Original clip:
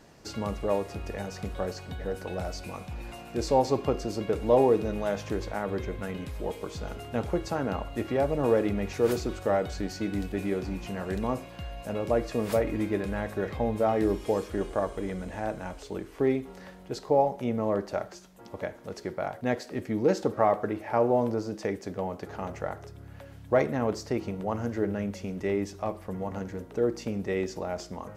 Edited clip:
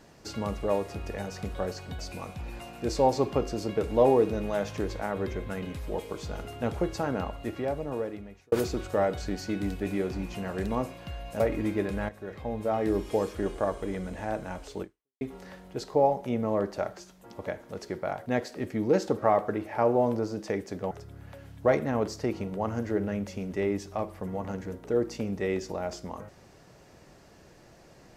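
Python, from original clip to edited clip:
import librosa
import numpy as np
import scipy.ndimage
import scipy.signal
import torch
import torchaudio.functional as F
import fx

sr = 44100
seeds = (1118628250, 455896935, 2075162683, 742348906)

y = fx.edit(x, sr, fx.cut(start_s=1.99, length_s=0.52),
    fx.fade_out_span(start_s=7.61, length_s=1.43),
    fx.cut(start_s=11.92, length_s=0.63),
    fx.fade_in_from(start_s=13.24, length_s=1.01, floor_db=-13.0),
    fx.fade_out_span(start_s=15.97, length_s=0.39, curve='exp'),
    fx.cut(start_s=22.06, length_s=0.72), tone=tone)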